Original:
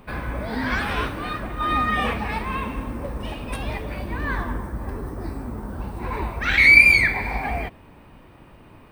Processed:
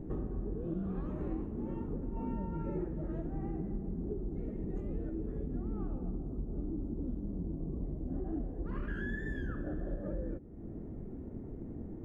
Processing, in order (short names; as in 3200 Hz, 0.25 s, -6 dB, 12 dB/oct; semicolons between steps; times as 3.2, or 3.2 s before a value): EQ curve 230 Hz 0 dB, 450 Hz +7 dB, 1000 Hz -15 dB, 2600 Hz -25 dB, 7500 Hz -30 dB; compressor 5:1, threshold -40 dBFS, peak gain reduction 17.5 dB; speed mistake 45 rpm record played at 33 rpm; gain +4.5 dB